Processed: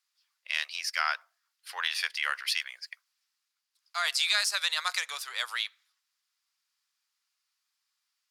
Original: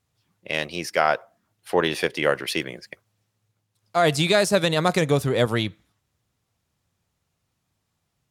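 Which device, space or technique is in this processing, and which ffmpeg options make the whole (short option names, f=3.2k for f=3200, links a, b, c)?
headphones lying on a table: -af "highpass=f=1.2k:w=0.5412,highpass=f=1.2k:w=1.3066,equalizer=f=4.8k:t=o:w=0.43:g=8,volume=-3.5dB"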